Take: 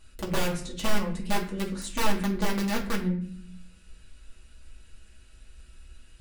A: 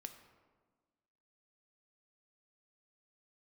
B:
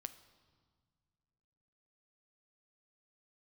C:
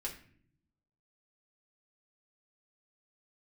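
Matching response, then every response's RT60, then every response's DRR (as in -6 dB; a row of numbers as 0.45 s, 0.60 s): C; 1.5 s, no single decay rate, no single decay rate; 6.5 dB, 11.0 dB, -3.0 dB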